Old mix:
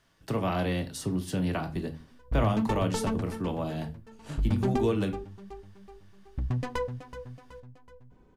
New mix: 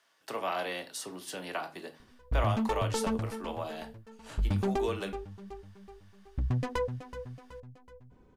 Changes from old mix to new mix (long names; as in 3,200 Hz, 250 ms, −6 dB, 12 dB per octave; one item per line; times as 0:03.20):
speech: add high-pass filter 580 Hz 12 dB per octave
background: send off